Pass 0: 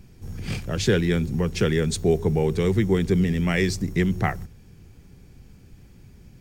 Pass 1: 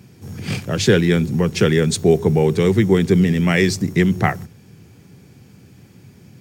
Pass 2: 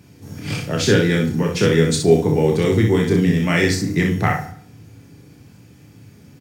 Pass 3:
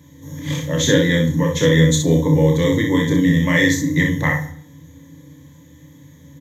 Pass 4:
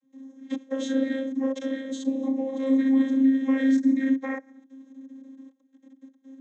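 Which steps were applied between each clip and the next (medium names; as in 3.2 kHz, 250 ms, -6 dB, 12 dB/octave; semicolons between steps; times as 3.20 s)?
high-pass 100 Hz 24 dB/octave; trim +6.5 dB
on a send: early reflections 29 ms -5 dB, 62 ms -5.5 dB; on the sum: FDN reverb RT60 0.59 s, low-frequency decay 1×, high-frequency decay 0.75×, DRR 6 dB; trim -2.5 dB
rippled EQ curve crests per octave 1.1, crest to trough 18 dB; trim -2.5 dB
level held to a coarse grid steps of 22 dB; vocoder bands 32, saw 267 Hz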